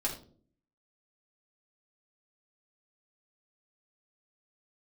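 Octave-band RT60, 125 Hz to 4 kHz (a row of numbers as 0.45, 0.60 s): 0.75, 0.75, 0.60, 0.35, 0.30, 0.30 s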